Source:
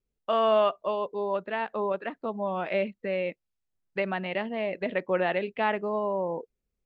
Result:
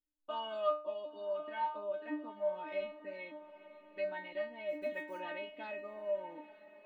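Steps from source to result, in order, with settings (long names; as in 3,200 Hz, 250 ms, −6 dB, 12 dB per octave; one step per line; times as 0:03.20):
0:04.68–0:05.20: one scale factor per block 7 bits
stiff-string resonator 300 Hz, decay 0.38 s, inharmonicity 0.002
hollow resonant body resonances 290/3,400 Hz, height 9 dB
on a send: feedback delay with all-pass diffusion 923 ms, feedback 45%, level −15.5 dB
on the sum: level +3.5 dB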